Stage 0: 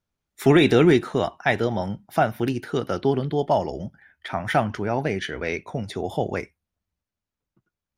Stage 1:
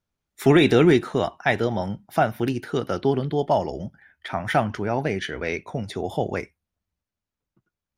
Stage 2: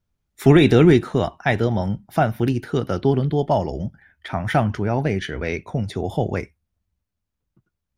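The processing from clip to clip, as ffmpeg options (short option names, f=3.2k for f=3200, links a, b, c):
-af anull
-af "lowshelf=f=180:g=11"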